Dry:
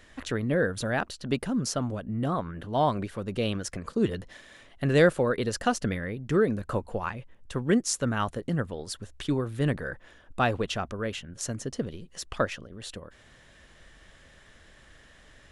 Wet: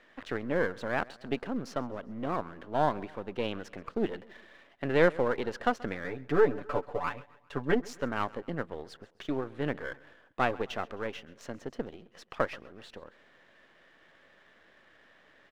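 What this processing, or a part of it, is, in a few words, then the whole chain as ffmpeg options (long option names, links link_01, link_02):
crystal radio: -filter_complex "[0:a]highpass=270,lowpass=2600,aeval=exprs='if(lt(val(0),0),0.447*val(0),val(0))':channel_layout=same,asettb=1/sr,asplit=3[link_01][link_02][link_03];[link_01]atrim=end=6.044[link_04];[link_02]atrim=start=6.04:end=7.88,asetpts=PTS-STARTPTS,afade=type=in:duration=0.004:curve=qsin,afade=type=out:start_time=1.836:duration=0.004:curve=qsin,aecho=1:1:6.9:0.83,atrim=end_sample=81144[link_05];[link_03]atrim=start=7.876[link_06];[link_04][link_05]acrossfade=duration=0.004:curve1=hsin:curve2=qsin[link_07];[link_07][link_06]acrossfade=duration=0.004:curve1=qsin:curve2=hsin,aecho=1:1:132|264|396:0.0794|0.0397|0.0199"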